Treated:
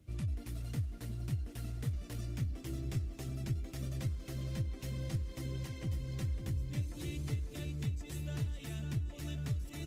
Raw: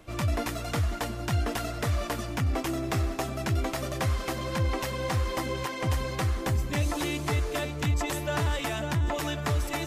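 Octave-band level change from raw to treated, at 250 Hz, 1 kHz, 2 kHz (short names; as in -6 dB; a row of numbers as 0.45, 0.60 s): -10.5, -25.5, -19.0 dB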